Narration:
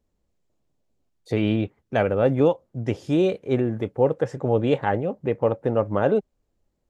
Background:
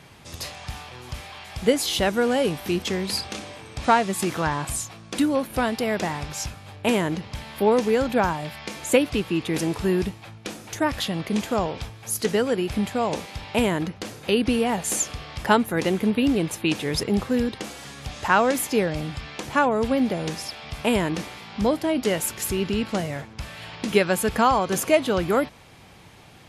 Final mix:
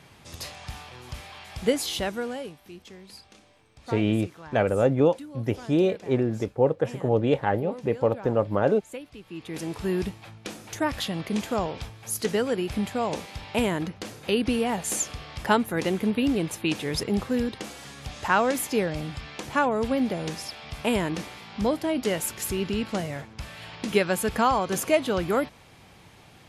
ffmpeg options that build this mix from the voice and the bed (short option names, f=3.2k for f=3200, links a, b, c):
-filter_complex "[0:a]adelay=2600,volume=-1.5dB[a];[1:a]volume=13.5dB,afade=t=out:st=1.75:d=0.82:silence=0.149624,afade=t=in:st=9.21:d=0.87:silence=0.141254[b];[a][b]amix=inputs=2:normalize=0"